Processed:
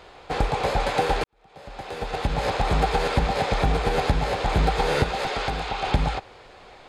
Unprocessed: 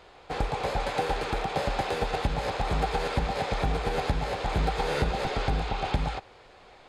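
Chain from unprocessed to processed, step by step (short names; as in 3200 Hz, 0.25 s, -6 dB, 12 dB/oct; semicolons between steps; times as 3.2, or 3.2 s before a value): 1.24–2.45 fade in quadratic; 5.03–5.87 low shelf 370 Hz -10 dB; gain +5.5 dB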